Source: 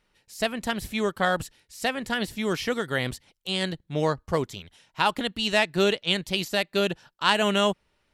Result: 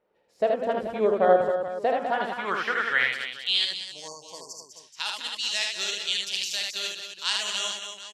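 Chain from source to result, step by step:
time-frequency box erased 0:03.65–0:04.70, 1,100–4,400 Hz
multi-tap delay 47/77/199/267/429/757 ms −9.5/−3/−9.5/−8/−12/−19.5 dB
band-pass filter sweep 530 Hz → 5,800 Hz, 0:01.82–0:03.95
level +7.5 dB

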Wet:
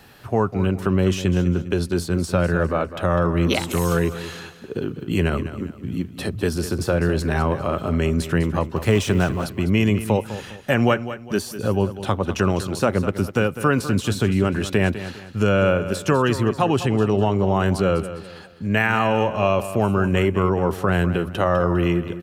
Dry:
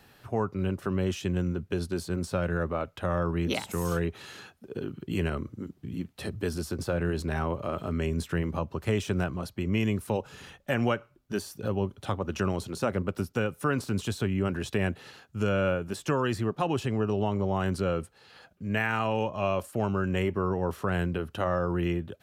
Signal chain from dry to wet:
0:08.76–0:09.46: mu-law and A-law mismatch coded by mu
on a send: repeating echo 202 ms, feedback 35%, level −12.5 dB
on the sum: level +8.5 dB

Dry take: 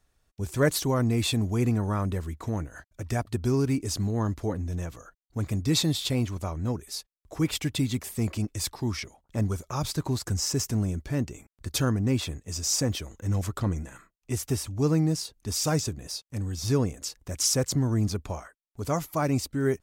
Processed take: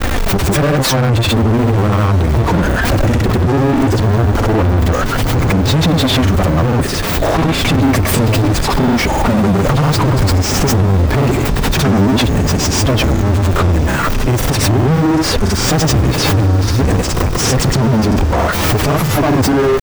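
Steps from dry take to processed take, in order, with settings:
converter with a step at zero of −30.5 dBFS
in parallel at −2 dB: compressor whose output falls as the input rises −29 dBFS
on the sum: flanger 0.33 Hz, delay 3.1 ms, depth 9.4 ms, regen +6%
fuzz pedal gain 44 dB, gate −47 dBFS
parametric band 10,000 Hz −15 dB 2.7 octaves
feedback delay with all-pass diffusion 1,380 ms, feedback 71%, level −13.5 dB
granular cloud, pitch spread up and down by 0 semitones
background raised ahead of every attack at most 28 dB per second
level +3.5 dB

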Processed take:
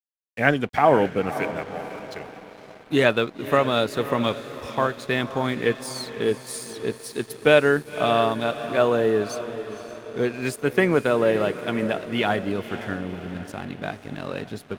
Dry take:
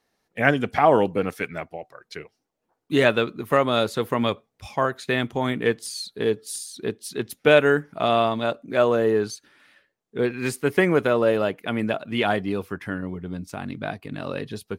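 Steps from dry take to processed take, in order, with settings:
feedback delay with all-pass diffusion 529 ms, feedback 56%, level −11.5 dB
pitch vibrato 0.59 Hz 10 cents
dead-zone distortion −44 dBFS

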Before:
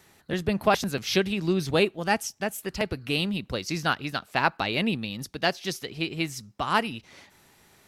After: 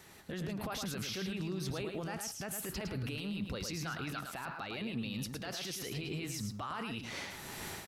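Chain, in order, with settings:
dynamic equaliser 1,300 Hz, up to +6 dB, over −42 dBFS, Q 2.7
automatic gain control gain up to 16 dB
brickwall limiter −33 dBFS, peak gain reduction 32 dB
on a send: single-tap delay 109 ms −6 dB
on the sum: level +1 dB

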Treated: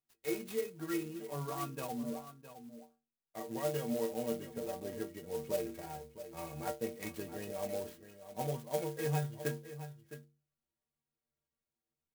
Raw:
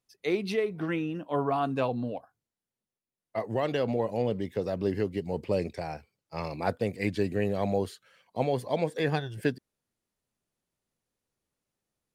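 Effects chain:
stiff-string resonator 69 Hz, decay 0.54 s, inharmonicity 0.03
single-tap delay 662 ms −12.5 dB
converter with an unsteady clock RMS 0.061 ms
level +2 dB

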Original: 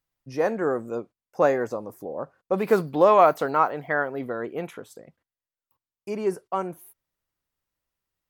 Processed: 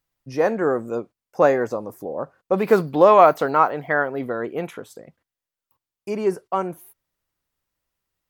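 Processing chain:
dynamic equaliser 10,000 Hz, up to −4 dB, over −52 dBFS, Q 1
level +4 dB

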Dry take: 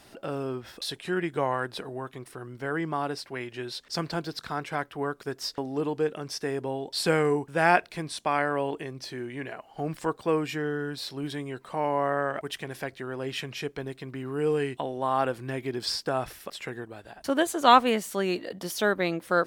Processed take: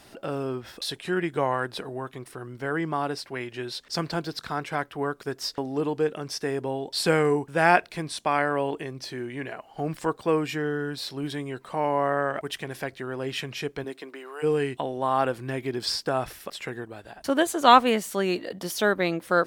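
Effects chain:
0:13.83–0:14.42: high-pass filter 170 Hz → 640 Hz 24 dB per octave
level +2 dB

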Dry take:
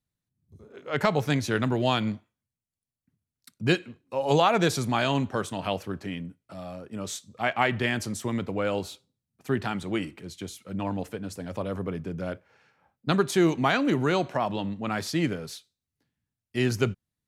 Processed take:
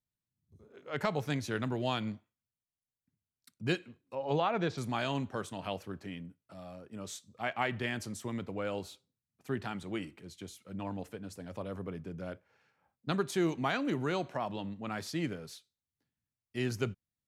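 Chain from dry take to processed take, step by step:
0:04.15–0:04.78: high-frequency loss of the air 190 metres
level −8.5 dB

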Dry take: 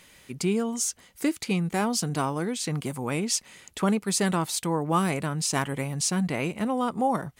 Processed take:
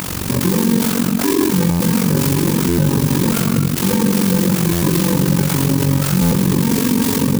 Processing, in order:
samples in bit-reversed order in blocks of 64 samples
in parallel at −6 dB: bit reduction 7 bits
on the sum: Butterworth band-reject 4,500 Hz, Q 1.5
low-shelf EQ 370 Hz +9.5 dB
upward compression, threshold −26 dBFS
high-pass filter 83 Hz
rectangular room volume 370 cubic metres, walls mixed, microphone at 2.9 metres
amplitude modulation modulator 46 Hz, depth 80%
boost into a limiter +20 dB
buffer that repeats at 0:01.70/0:02.68/0:04.72/0:06.21, samples 512, times 8
converter with an unsteady clock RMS 0.087 ms
level −5 dB

